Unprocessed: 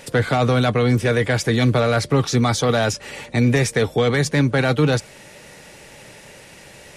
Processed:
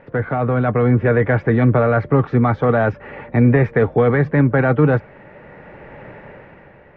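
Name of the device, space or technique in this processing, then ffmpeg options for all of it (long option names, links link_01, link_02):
action camera in a waterproof case: -af "lowpass=frequency=1800:width=0.5412,lowpass=frequency=1800:width=1.3066,dynaudnorm=framelen=160:gausssize=9:maxgain=10dB,volume=-2dB" -ar 44100 -c:a aac -b:a 128k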